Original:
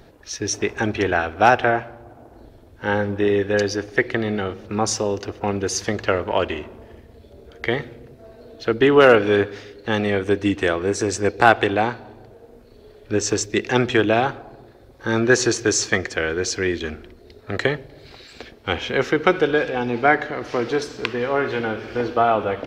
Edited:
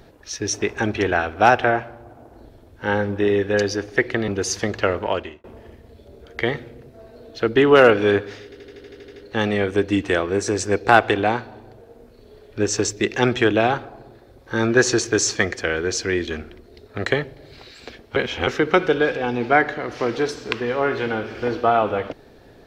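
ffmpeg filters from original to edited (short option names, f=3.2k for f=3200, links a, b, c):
-filter_complex "[0:a]asplit=14[a][b][c][d][e][f][g][h][i][j][k][l][m][n];[a]atrim=end=4.282[o];[b]atrim=start=5.528:end=6.69,asetpts=PTS-STARTPTS,afade=t=out:st=0.742:d=0.42[p];[c]atrim=start=6.69:end=9.772,asetpts=PTS-STARTPTS,afade=t=in:d=0.004:c=hsin[q];[d]atrim=start=9.688:end=9.772[r];[e]atrim=start=9.688:end=9.772[s];[f]atrim=start=9.688:end=9.772[t];[g]atrim=start=9.688:end=9.772[u];[h]atrim=start=9.688:end=9.772[v];[i]atrim=start=9.688:end=9.772[w];[j]atrim=start=9.688:end=9.772[x];[k]atrim=start=9.688:end=9.772[y];[l]atrim=start=9.688:end=18.692[z];[m]atrim=start=18.688:end=19.002,asetpts=PTS-STARTPTS,areverse[aa];[n]atrim=start=18.998[ab];[p][q]concat=n=2:v=0:a=1[ac];[o][ac]acrossfade=d=0.004:c1=hsin:c2=hsin[ad];[ad][r]acrossfade=d=0.004:c1=hsin:c2=hsin[ae];[ae][s]acrossfade=d=0.004:c1=hsin:c2=hsin[af];[af][t]acrossfade=d=0.004:c1=hsin:c2=hsin[ag];[ag][u]acrossfade=d=0.004:c1=hsin:c2=hsin[ah];[ah][v]acrossfade=d=0.004:c1=hsin:c2=hsin[ai];[ai][w]acrossfade=d=0.004:c1=hsin:c2=hsin[aj];[aj][x]acrossfade=d=0.004:c1=hsin:c2=hsin[ak];[ak][y]acrossfade=d=0.004:c1=hsin:c2=hsin[al];[al][z]acrossfade=d=0.004:c1=hsin:c2=hsin[am];[am][aa]acrossfade=d=0.004:c1=hsin:c2=hsin[an];[an][ab]acrossfade=d=0.004:c1=hsin:c2=hsin"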